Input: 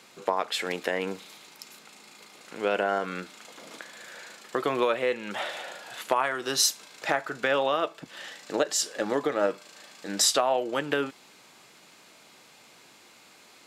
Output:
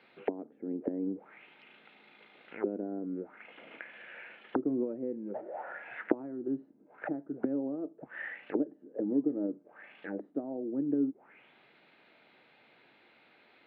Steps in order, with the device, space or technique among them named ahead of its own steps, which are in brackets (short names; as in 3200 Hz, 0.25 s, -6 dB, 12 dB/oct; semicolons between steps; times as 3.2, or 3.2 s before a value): envelope filter bass rig (envelope low-pass 280–4900 Hz down, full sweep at -27.5 dBFS; speaker cabinet 74–2300 Hz, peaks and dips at 110 Hz -4 dB, 180 Hz -4 dB, 1100 Hz -8 dB); gain -5.5 dB